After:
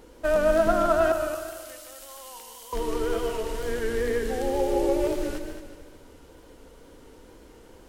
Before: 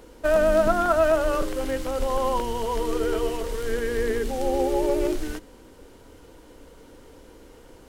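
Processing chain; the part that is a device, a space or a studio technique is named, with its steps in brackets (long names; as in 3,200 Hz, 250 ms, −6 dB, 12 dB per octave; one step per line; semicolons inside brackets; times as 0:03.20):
0:01.12–0:02.73: first-order pre-emphasis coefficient 0.97
multi-head tape echo (echo machine with several playback heads 74 ms, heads second and third, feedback 46%, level −9 dB; tape wow and flutter)
level −2.5 dB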